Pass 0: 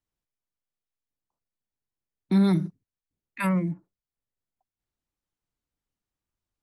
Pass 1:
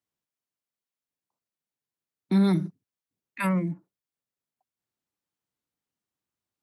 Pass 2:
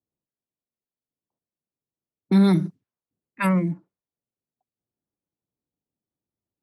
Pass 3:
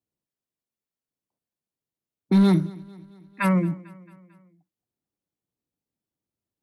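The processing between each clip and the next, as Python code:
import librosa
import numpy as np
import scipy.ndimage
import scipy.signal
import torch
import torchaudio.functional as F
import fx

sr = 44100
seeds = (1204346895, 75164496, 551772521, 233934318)

y1 = scipy.signal.sosfilt(scipy.signal.butter(2, 130.0, 'highpass', fs=sr, output='sos'), x)
y2 = fx.env_lowpass(y1, sr, base_hz=550.0, full_db=-25.0)
y2 = y2 * librosa.db_to_amplitude(4.5)
y3 = np.clip(y2, -10.0 ** (-12.0 / 20.0), 10.0 ** (-12.0 / 20.0))
y3 = fx.echo_feedback(y3, sr, ms=223, feedback_pct=56, wet_db=-22)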